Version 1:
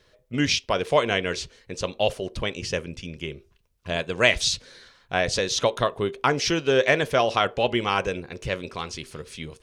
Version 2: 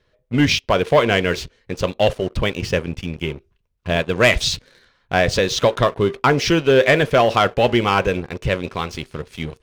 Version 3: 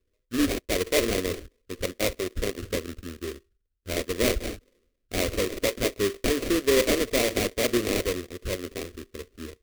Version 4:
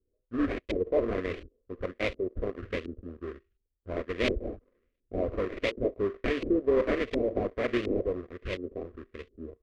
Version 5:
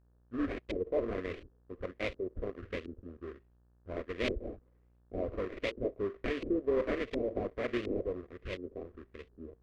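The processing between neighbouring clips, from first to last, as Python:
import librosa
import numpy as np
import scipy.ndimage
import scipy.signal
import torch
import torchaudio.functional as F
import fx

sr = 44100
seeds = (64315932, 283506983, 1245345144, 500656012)

y1 = fx.bass_treble(x, sr, bass_db=3, treble_db=-8)
y1 = fx.leveller(y1, sr, passes=2)
y2 = fx.env_lowpass(y1, sr, base_hz=400.0, full_db=-12.5)
y2 = fx.sample_hold(y2, sr, seeds[0], rate_hz=1500.0, jitter_pct=20)
y2 = fx.fixed_phaser(y2, sr, hz=360.0, stages=4)
y2 = F.gain(torch.from_numpy(y2), -5.5).numpy()
y3 = fx.filter_lfo_lowpass(y2, sr, shape='saw_up', hz=1.4, low_hz=340.0, high_hz=3200.0, q=1.6)
y3 = F.gain(torch.from_numpy(y3), -4.5).numpy()
y4 = fx.dmg_buzz(y3, sr, base_hz=60.0, harmonics=30, level_db=-61.0, tilt_db=-8, odd_only=False)
y4 = F.gain(torch.from_numpy(y4), -5.5).numpy()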